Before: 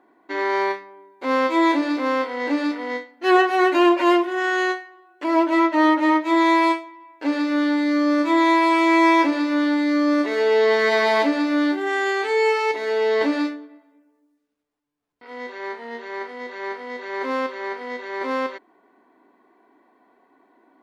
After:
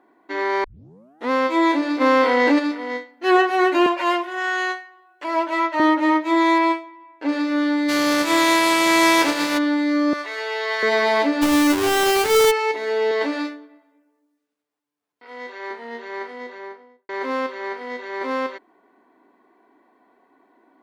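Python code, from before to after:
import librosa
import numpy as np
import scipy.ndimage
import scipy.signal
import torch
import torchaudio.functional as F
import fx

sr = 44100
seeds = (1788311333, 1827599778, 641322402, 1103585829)

y = fx.env_flatten(x, sr, amount_pct=70, at=(2.0, 2.58), fade=0.02)
y = fx.highpass(y, sr, hz=540.0, slope=12, at=(3.86, 5.8))
y = fx.lowpass(y, sr, hz=4000.0, slope=6, at=(6.58, 7.29))
y = fx.spec_flatten(y, sr, power=0.57, at=(7.88, 9.57), fade=0.02)
y = fx.highpass(y, sr, hz=900.0, slope=12, at=(10.13, 10.83))
y = fx.halfwave_hold(y, sr, at=(11.41, 12.5), fade=0.02)
y = fx.highpass(y, sr, hz=360.0, slope=6, at=(13.11, 15.71))
y = fx.studio_fade_out(y, sr, start_s=16.3, length_s=0.79)
y = fx.edit(y, sr, fx.tape_start(start_s=0.64, length_s=0.66), tone=tone)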